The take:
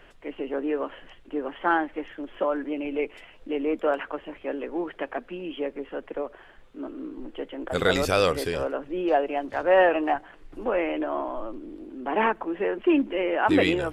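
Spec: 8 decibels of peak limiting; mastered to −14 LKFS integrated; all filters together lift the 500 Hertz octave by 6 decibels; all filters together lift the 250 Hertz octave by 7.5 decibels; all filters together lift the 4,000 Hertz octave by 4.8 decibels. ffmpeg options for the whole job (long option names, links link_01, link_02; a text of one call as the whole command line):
ffmpeg -i in.wav -af "equalizer=frequency=250:width_type=o:gain=8,equalizer=frequency=500:width_type=o:gain=5,equalizer=frequency=4000:width_type=o:gain=6,volume=9.5dB,alimiter=limit=-2dB:level=0:latency=1" out.wav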